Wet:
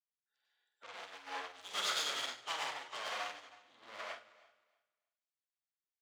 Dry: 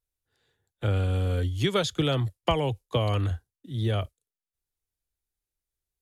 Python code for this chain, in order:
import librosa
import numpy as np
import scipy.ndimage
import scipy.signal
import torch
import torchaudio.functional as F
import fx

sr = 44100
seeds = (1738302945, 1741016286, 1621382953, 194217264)

y = fx.spec_quant(x, sr, step_db=30)
y = fx.tube_stage(y, sr, drive_db=39.0, bias=0.4)
y = scipy.signal.sosfilt(scipy.signal.butter(4, 8000.0, 'lowpass', fs=sr, output='sos'), y)
y = fx.echo_feedback(y, sr, ms=313, feedback_pct=19, wet_db=-10)
y = fx.rev_plate(y, sr, seeds[0], rt60_s=0.56, hf_ratio=1.0, predelay_ms=85, drr_db=-3.0)
y = np.clip(10.0 ** (36.0 / 20.0) * y, -1.0, 1.0) / 10.0 ** (36.0 / 20.0)
y = scipy.signal.sosfilt(scipy.signal.butter(2, 1100.0, 'highpass', fs=sr, output='sos'), y)
y = fx.high_shelf(y, sr, hz=4800.0, db=-5.0)
y = fx.doubler(y, sr, ms=47.0, db=-6.0)
y = fx.upward_expand(y, sr, threshold_db=-55.0, expansion=2.5)
y = y * librosa.db_to_amplitude(10.0)